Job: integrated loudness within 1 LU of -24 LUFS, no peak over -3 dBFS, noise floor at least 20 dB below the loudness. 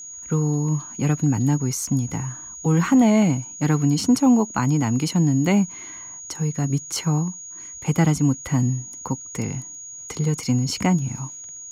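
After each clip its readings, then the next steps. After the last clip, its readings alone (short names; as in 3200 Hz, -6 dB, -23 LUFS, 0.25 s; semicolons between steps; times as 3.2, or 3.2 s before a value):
steady tone 6700 Hz; tone level -35 dBFS; loudness -22.0 LUFS; peak -7.5 dBFS; loudness target -24.0 LUFS
-> notch 6700 Hz, Q 30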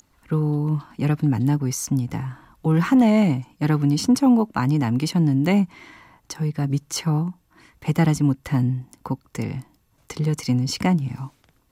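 steady tone none; loudness -22.0 LUFS; peak -7.5 dBFS; loudness target -24.0 LUFS
-> gain -2 dB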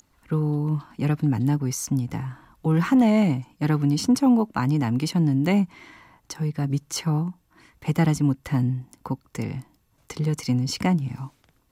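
loudness -24.0 LUFS; peak -9.5 dBFS; noise floor -65 dBFS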